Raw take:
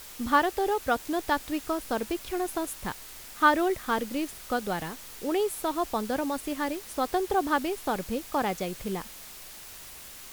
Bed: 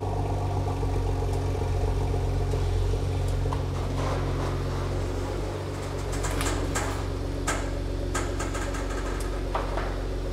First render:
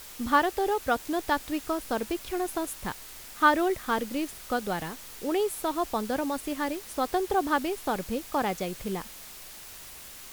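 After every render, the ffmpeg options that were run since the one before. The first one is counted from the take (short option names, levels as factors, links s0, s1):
-af anull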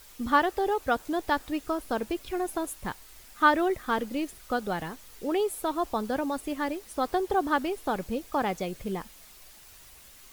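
-af "afftdn=nr=8:nf=-45"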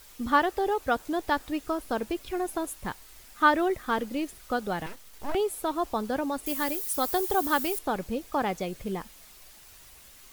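-filter_complex "[0:a]asettb=1/sr,asplit=3[s0][s1][s2];[s0]atrim=end=4.864[s3];[s1]atrim=start=4.86:end=5.35,asetpts=PTS-STARTPTS,afade=t=in:d=0.004:c=qsin,afade=t=out:st=0.486:d=0.004:c=qsin,aeval=exprs='abs(val(0))':c=same[s4];[s2]atrim=start=5.346[s5];[s3][s4]acrossfade=d=0.004:c1=hsin:c2=qsin[s6];[s6][s5]acrossfade=d=0.004:c1=qsin:c2=hsin,asettb=1/sr,asplit=3[s7][s8][s9];[s7]atrim=end=6.464[s10];[s8]atrim=start=6.46:end=7.79,asetpts=PTS-STARTPTS,afade=t=in:d=0.004:c=qsin,afade=t=out:st=1.326:d=0.004:c=qsin,aemphasis=mode=production:type=75fm[s11];[s9]atrim=start=7.786[s12];[s10][s11]acrossfade=d=0.004:c1=hsin:c2=qsin[s13];[s13][s12]acrossfade=d=0.004:c1=qsin:c2=hsin"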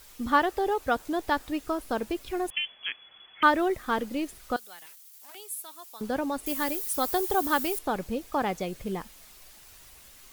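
-filter_complex "[0:a]asettb=1/sr,asplit=3[s0][s1][s2];[s0]atrim=end=2.504[s3];[s1]atrim=start=2.5:end=3.43,asetpts=PTS-STARTPTS,afade=t=in:d=0.004:c=qsin,afade=t=out:st=0.926:d=0.004:c=qsin,lowpass=f=2900:t=q:w=0.5098,lowpass=f=2900:t=q:w=0.6013,lowpass=f=2900:t=q:w=0.9,lowpass=f=2900:t=q:w=2.563,afreqshift=-3400[s4];[s2]atrim=start=3.426[s5];[s3][s4]acrossfade=d=0.004:c1=hsin:c2=qsin[s6];[s6][s5]acrossfade=d=0.004:c1=qsin:c2=hsin,asettb=1/sr,asplit=3[s7][s8][s9];[s7]atrim=end=4.564[s10];[s8]atrim=start=4.56:end=6.01,asetpts=PTS-STARTPTS,afade=t=in:d=0.004:c=qsin,afade=t=out:st=1.446:d=0.004:c=qsin,aderivative[s11];[s9]atrim=start=6.006[s12];[s10][s11]acrossfade=d=0.004:c1=hsin:c2=qsin[s13];[s13][s12]acrossfade=d=0.004:c1=qsin:c2=hsin"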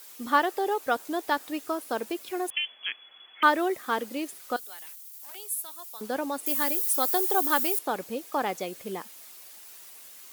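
-af "highpass=280,highshelf=f=7500:g=7"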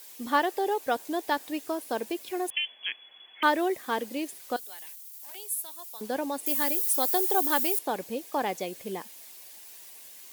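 -af "equalizer=f=1300:t=o:w=0.3:g=-9"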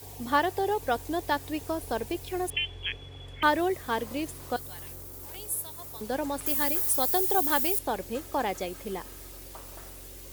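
-filter_complex "[1:a]volume=0.119[s0];[0:a][s0]amix=inputs=2:normalize=0"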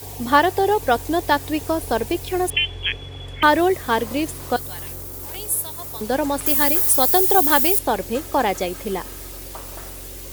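-af "volume=2.99,alimiter=limit=0.794:level=0:latency=1"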